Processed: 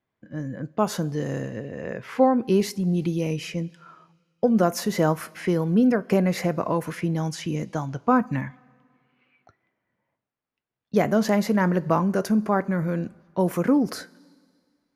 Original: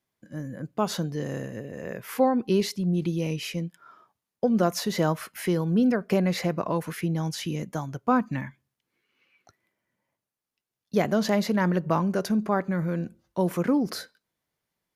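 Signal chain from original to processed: level-controlled noise filter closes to 2.4 kHz, open at -23.5 dBFS; two-slope reverb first 0.23 s, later 2 s, from -18 dB, DRR 16 dB; dynamic bell 3.8 kHz, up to -7 dB, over -49 dBFS, Q 1.4; trim +3 dB

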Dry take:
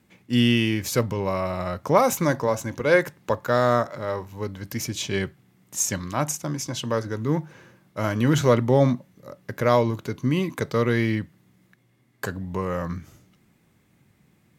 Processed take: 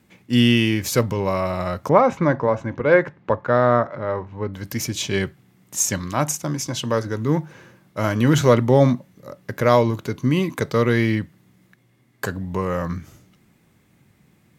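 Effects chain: 1.89–4.54 s: low-pass 2.1 kHz 12 dB/octave; trim +3.5 dB

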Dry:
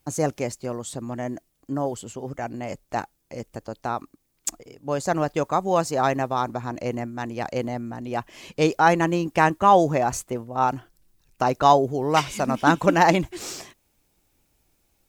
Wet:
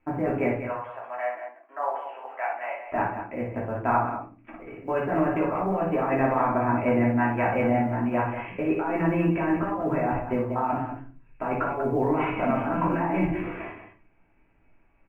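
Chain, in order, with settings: 0.59–2.86 s: high-pass 690 Hz 24 dB/octave; de-esser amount 80%; steep low-pass 2.6 kHz 72 dB/octave; tilt EQ +1.5 dB/octave; compressor with a negative ratio -27 dBFS, ratio -1; short-mantissa float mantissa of 6-bit; loudspeakers at several distances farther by 20 m -6 dB, 65 m -9 dB; simulated room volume 200 m³, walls furnished, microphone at 2.9 m; trim -4.5 dB

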